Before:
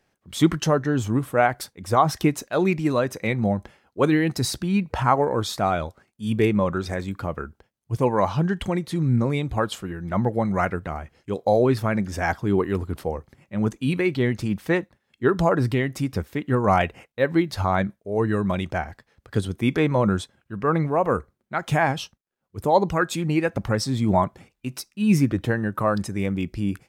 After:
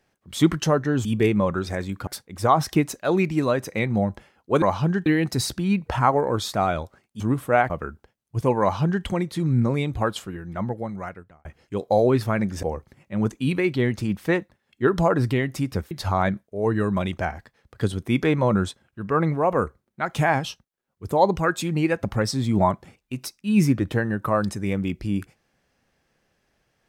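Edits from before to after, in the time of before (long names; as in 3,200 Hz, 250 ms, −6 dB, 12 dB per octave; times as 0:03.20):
0:01.05–0:01.55: swap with 0:06.24–0:07.26
0:08.17–0:08.61: duplicate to 0:04.10
0:09.58–0:11.01: fade out
0:12.19–0:13.04: remove
0:16.32–0:17.44: remove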